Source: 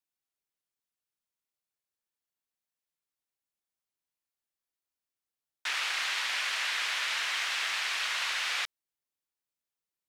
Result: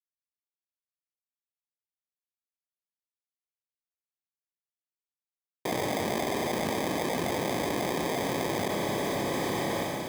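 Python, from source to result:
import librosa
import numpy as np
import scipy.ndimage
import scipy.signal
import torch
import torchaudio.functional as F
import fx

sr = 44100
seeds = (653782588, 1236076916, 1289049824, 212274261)

y = fx.law_mismatch(x, sr, coded='A')
y = fx.chorus_voices(y, sr, voices=6, hz=0.59, base_ms=25, depth_ms=1.1, mix_pct=70)
y = fx.sample_hold(y, sr, seeds[0], rate_hz=1400.0, jitter_pct=0)
y = scipy.signal.sosfilt(scipy.signal.bessel(2, 180.0, 'highpass', norm='mag', fs=sr, output='sos'), y)
y = fx.rev_schroeder(y, sr, rt60_s=3.0, comb_ms=30, drr_db=13.0)
y = fx.env_flatten(y, sr, amount_pct=100)
y = y * librosa.db_to_amplitude(2.5)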